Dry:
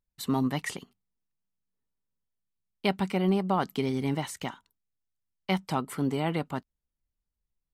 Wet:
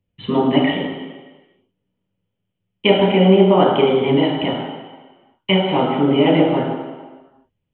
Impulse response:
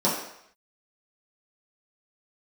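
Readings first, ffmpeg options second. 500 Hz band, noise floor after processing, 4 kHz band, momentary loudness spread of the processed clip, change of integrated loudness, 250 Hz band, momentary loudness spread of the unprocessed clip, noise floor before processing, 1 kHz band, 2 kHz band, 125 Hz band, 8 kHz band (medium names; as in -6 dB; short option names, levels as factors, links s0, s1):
+18.0 dB, -76 dBFS, +16.5 dB, 18 LU, +14.0 dB, +13.0 dB, 12 LU, under -85 dBFS, +12.0 dB, +12.0 dB, +11.0 dB, under -35 dB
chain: -filter_complex "[0:a]acrossover=split=260[s0][s1];[s0]acompressor=threshold=0.00447:ratio=6[s2];[s2][s1]amix=inputs=2:normalize=0[s3];[1:a]atrim=start_sample=2205,asetrate=23814,aresample=44100[s4];[s3][s4]afir=irnorm=-1:irlink=0,aresample=8000,aresample=44100,volume=0.631"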